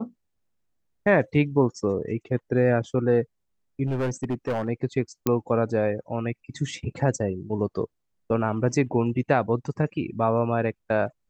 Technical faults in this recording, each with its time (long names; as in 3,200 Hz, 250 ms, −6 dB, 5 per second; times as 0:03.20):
0:03.87–0:04.69: clipping −22.5 dBFS
0:05.27: click −8 dBFS